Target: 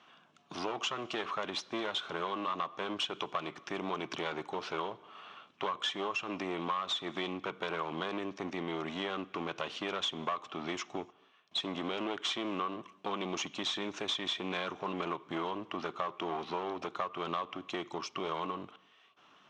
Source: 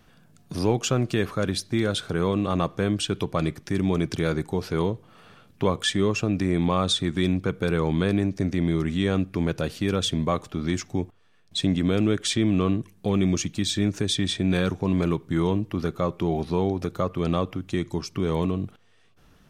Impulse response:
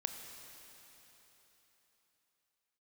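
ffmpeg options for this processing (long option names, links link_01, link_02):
-filter_complex "[0:a]aeval=exprs='clip(val(0),-1,0.0282)':channel_layout=same,highpass=450,equalizer=frequency=490:width_type=q:width=4:gain=-8,equalizer=frequency=1100:width_type=q:width=4:gain=7,equalizer=frequency=1700:width_type=q:width=4:gain=-4,equalizer=frequency=3000:width_type=q:width=4:gain=5,equalizer=frequency=4700:width_type=q:width=4:gain=-9,lowpass=frequency=5400:width=0.5412,lowpass=frequency=5400:width=1.3066,asplit=2[link_01][link_02];[1:a]atrim=start_sample=2205,afade=type=out:start_time=0.35:duration=0.01,atrim=end_sample=15876[link_03];[link_02][link_03]afir=irnorm=-1:irlink=0,volume=-17.5dB[link_04];[link_01][link_04]amix=inputs=2:normalize=0,acompressor=threshold=-31dB:ratio=6"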